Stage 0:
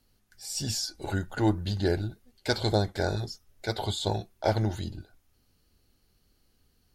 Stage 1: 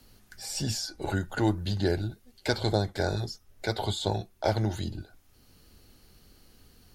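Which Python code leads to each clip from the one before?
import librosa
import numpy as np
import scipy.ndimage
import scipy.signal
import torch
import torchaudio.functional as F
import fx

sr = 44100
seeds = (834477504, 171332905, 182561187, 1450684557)

y = fx.band_squash(x, sr, depth_pct=40)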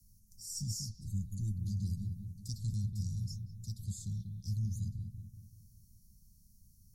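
y = scipy.signal.sosfilt(scipy.signal.cheby1(4, 1.0, [190.0, 5700.0], 'bandstop', fs=sr, output='sos'), x)
y = fx.echo_bbd(y, sr, ms=191, stages=4096, feedback_pct=50, wet_db=-5.5)
y = y * librosa.db_to_amplitude(-4.5)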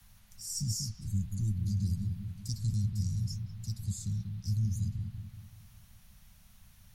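y = fx.dmg_noise_band(x, sr, seeds[0], low_hz=580.0, high_hz=4600.0, level_db=-75.0)
y = y * librosa.db_to_amplitude(4.5)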